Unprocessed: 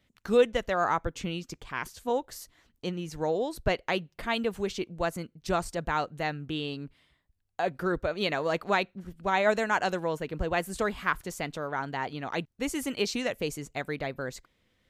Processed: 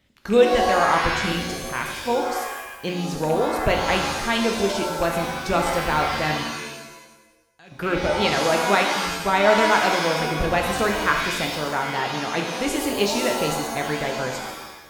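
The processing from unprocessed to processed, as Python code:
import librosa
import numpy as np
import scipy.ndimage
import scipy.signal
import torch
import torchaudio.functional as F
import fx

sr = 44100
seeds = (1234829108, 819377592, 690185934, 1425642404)

y = fx.rattle_buzz(x, sr, strikes_db=-35.0, level_db=-30.0)
y = fx.tone_stack(y, sr, knobs='6-0-2', at=(6.43, 7.72))
y = fx.rev_shimmer(y, sr, seeds[0], rt60_s=1.0, semitones=7, shimmer_db=-2, drr_db=2.5)
y = y * 10.0 ** (5.0 / 20.0)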